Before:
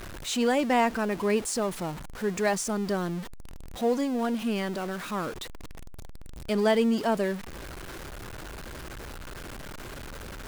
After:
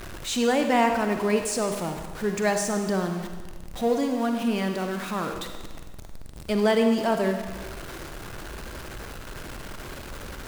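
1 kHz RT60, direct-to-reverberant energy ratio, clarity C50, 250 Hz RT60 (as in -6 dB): 1.4 s, 5.0 dB, 6.0 dB, 1.4 s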